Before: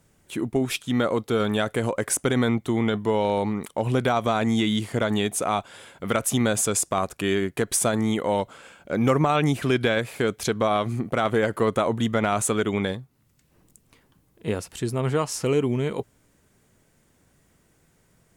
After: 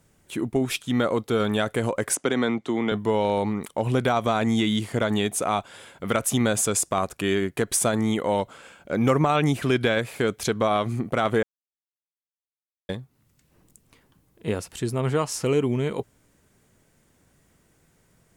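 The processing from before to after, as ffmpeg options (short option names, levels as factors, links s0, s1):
-filter_complex "[0:a]asettb=1/sr,asplit=3[s0][s1][s2];[s0]atrim=end=2.154[s3];[s1]atrim=start=2.15:end=2.92,asetpts=PTS-STARTPTS,afade=t=in:d=0.004:c=qsin,afade=t=out:st=0.766:d=0.004:c=qsin,acrossover=split=180 7800:gain=0.141 1 0.0631[s4][s5][s6];[s4][s5][s6]amix=inputs=3:normalize=0[s7];[s2]atrim=start=2.916[s8];[s3][s7]acrossfade=d=0.004:c1=hsin:c2=qsin[s9];[s9][s8]acrossfade=d=0.004:c1=qsin:c2=hsin,asplit=3[s10][s11][s12];[s10]atrim=end=11.43,asetpts=PTS-STARTPTS,afade=t=out:st=11.426:d=0.004:c=hsin[s13];[s11]atrim=start=11.43:end=12.89,asetpts=PTS-STARTPTS,volume=0[s14];[s12]atrim=start=12.89,asetpts=PTS-STARTPTS,afade=t=in:d=0.004:c=hsin[s15];[s13][s14][s15]concat=n=3:v=0:a=1"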